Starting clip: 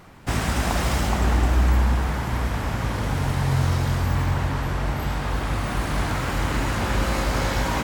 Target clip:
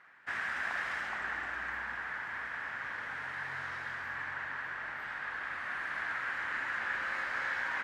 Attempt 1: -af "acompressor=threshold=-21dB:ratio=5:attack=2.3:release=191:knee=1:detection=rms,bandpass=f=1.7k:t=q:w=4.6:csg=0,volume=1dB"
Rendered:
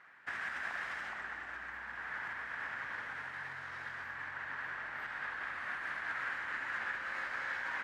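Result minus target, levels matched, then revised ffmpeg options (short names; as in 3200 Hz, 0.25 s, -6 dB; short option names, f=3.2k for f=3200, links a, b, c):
compressor: peak gain reduction +8 dB
-af "bandpass=f=1.7k:t=q:w=4.6:csg=0,volume=1dB"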